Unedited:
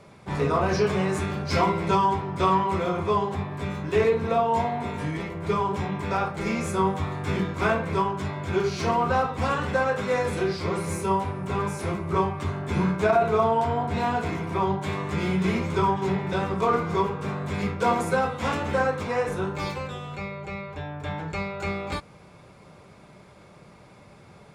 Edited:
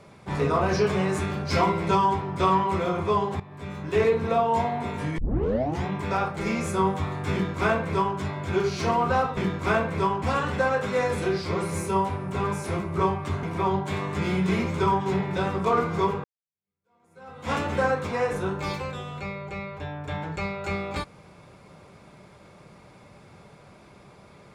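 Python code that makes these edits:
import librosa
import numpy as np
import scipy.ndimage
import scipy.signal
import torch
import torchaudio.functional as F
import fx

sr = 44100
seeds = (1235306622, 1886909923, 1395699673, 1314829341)

y = fx.edit(x, sr, fx.fade_in_from(start_s=3.4, length_s=0.64, floor_db=-15.5),
    fx.tape_start(start_s=5.18, length_s=0.67),
    fx.duplicate(start_s=7.32, length_s=0.85, to_s=9.37),
    fx.cut(start_s=12.58, length_s=1.81),
    fx.fade_in_span(start_s=17.2, length_s=1.28, curve='exp'), tone=tone)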